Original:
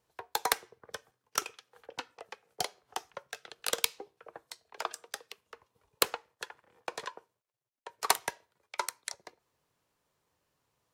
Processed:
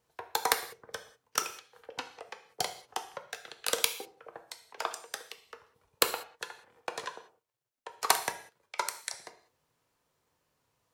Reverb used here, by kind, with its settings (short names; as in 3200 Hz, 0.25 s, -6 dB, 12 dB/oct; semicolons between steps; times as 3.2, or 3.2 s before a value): non-linear reverb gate 0.22 s falling, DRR 7 dB; gain +1 dB